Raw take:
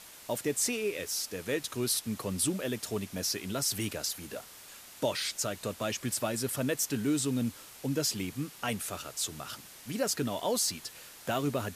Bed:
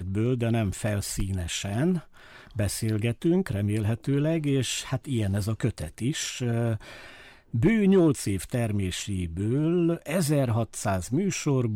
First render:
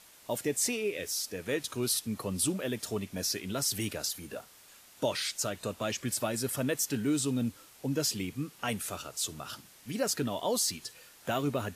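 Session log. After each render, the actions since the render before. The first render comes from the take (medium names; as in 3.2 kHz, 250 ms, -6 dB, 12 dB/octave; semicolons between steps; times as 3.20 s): noise print and reduce 6 dB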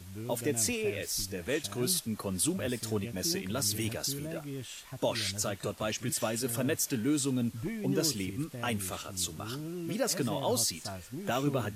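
add bed -15 dB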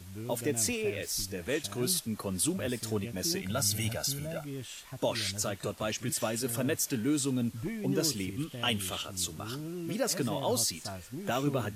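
0.45–1.10 s: hysteresis with a dead band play -54 dBFS; 3.41–4.45 s: comb 1.4 ms, depth 62%; 8.37–9.05 s: peaking EQ 3.1 kHz +14.5 dB 0.31 oct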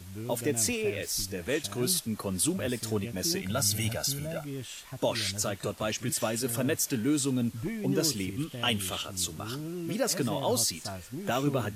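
trim +2 dB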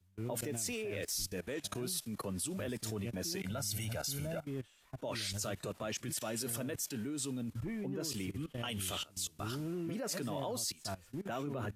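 level held to a coarse grid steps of 19 dB; three bands expanded up and down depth 70%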